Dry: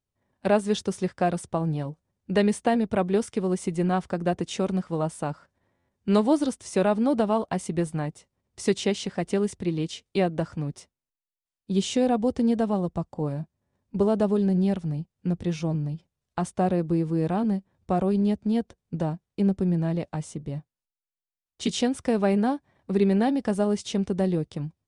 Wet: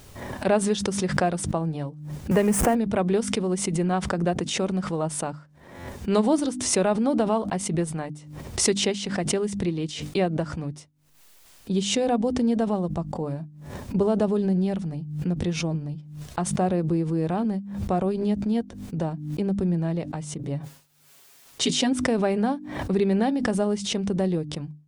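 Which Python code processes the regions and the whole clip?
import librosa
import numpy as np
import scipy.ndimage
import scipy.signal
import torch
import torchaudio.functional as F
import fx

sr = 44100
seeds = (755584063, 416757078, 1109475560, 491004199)

y = fx.chain(x, sr, fx.zero_step(step_db=-29.5),
    fx.peak_eq(hz=3900.0, db=-15.0, octaves=0.79),
    fx.band_squash(depth_pct=40), at=(2.31, 2.75))
y = fx.chain(y, sr, fx.highpass(hz=110.0, slope=6),
    fx.comb(ms=7.3, depth=0.92),
    fx.sustainer(db_per_s=140.0), at=(20.39, 21.93))
y = fx.hum_notches(y, sr, base_hz=50, count=6)
y = fx.pre_swell(y, sr, db_per_s=59.0)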